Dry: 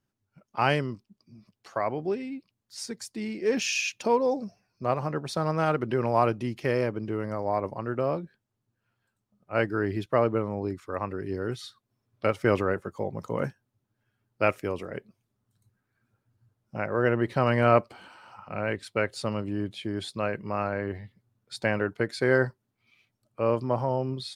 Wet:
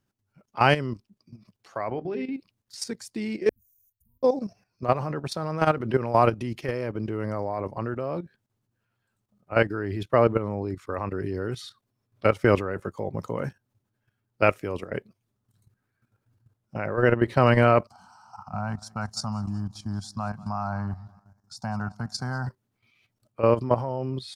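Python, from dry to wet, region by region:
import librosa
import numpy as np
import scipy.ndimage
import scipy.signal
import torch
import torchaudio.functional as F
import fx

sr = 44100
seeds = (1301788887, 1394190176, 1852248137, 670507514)

y = fx.chain(x, sr, fx.lowpass(hz=4100.0, slope=12),
    fx.hum_notches(base_hz=50, count=8), at=(1.9, 2.34))
y = fx.chain(y, sr, fx.cheby2_bandstop(low_hz=310.0, high_hz=4900.0, order=4, stop_db=70),
    fx.comb(ms=1.2, depth=0.45), at=(3.49, 4.23))
y = fx.chain(y, sr, fx.curve_eq(hz=(230.0, 330.0, 510.0, 750.0, 1400.0, 2000.0, 3500.0, 5500.0, 9100.0), db=(0, -21, -24, 4, -3, -23, -14, 9, -2)),
    fx.echo_feedback(ms=190, feedback_pct=47, wet_db=-21.0), at=(17.87, 22.47))
y = fx.peak_eq(y, sr, hz=100.0, db=2.5, octaves=0.53)
y = fx.level_steps(y, sr, step_db=12)
y = y * librosa.db_to_amplitude(6.5)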